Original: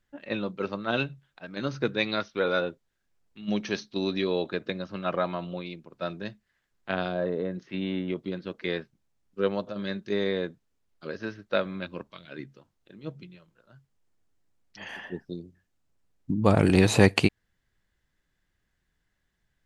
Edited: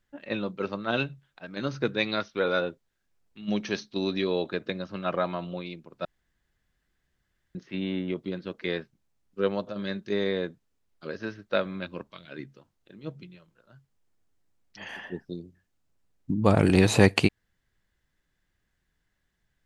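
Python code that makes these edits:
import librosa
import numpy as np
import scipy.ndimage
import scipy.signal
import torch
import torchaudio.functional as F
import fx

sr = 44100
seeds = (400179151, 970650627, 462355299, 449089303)

y = fx.edit(x, sr, fx.room_tone_fill(start_s=6.05, length_s=1.5), tone=tone)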